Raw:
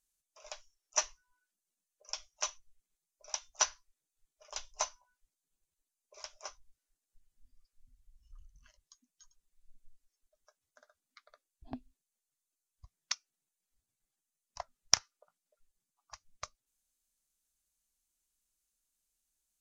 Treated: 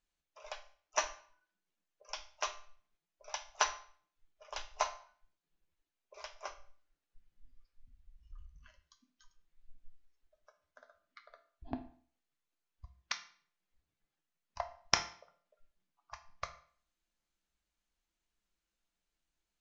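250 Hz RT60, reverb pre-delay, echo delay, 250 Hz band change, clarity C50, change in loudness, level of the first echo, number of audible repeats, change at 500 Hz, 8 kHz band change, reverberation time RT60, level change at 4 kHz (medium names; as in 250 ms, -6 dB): 0.50 s, 6 ms, no echo, +3.0 dB, 12.5 dB, -3.0 dB, no echo, no echo, +4.0 dB, -7.0 dB, 0.50 s, -3.5 dB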